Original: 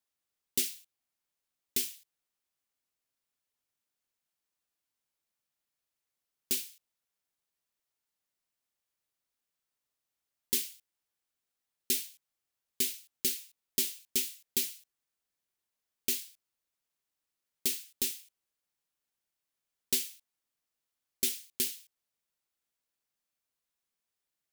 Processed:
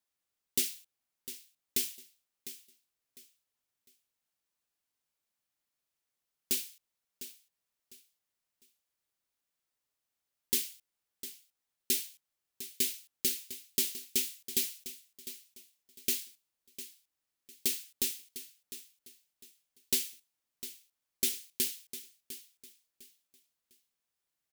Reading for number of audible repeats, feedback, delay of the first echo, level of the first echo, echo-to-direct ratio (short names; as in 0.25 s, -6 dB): 2, 28%, 0.703 s, -13.5 dB, -13.0 dB